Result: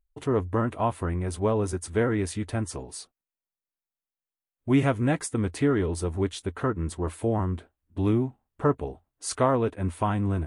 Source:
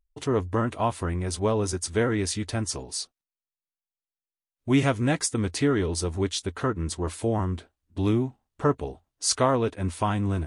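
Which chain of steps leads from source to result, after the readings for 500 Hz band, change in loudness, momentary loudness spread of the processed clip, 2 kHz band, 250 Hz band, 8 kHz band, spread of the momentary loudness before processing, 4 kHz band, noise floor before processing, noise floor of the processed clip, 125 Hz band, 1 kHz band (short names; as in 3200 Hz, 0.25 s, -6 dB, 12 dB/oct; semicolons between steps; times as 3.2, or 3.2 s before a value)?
0.0 dB, -0.5 dB, 10 LU, -2.0 dB, 0.0 dB, -7.5 dB, 9 LU, -9.0 dB, under -85 dBFS, under -85 dBFS, 0.0 dB, -0.5 dB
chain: bell 5300 Hz -11.5 dB 1.5 oct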